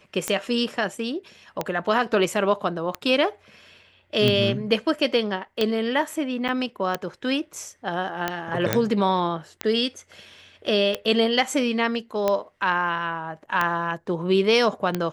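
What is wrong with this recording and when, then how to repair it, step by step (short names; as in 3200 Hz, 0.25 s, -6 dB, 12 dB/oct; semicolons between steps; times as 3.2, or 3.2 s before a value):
tick 45 rpm -9 dBFS
6.48–6.49 gap 7.8 ms
8.73 pop -4 dBFS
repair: de-click; interpolate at 6.48, 7.8 ms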